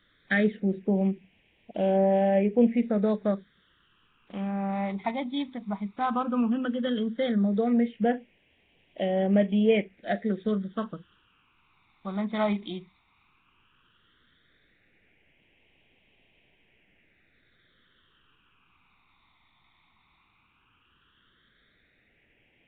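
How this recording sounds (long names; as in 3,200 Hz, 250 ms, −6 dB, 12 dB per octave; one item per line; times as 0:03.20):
a quantiser's noise floor 10 bits, dither triangular
phaser sweep stages 12, 0.14 Hz, lowest notch 510–1,300 Hz
Nellymoser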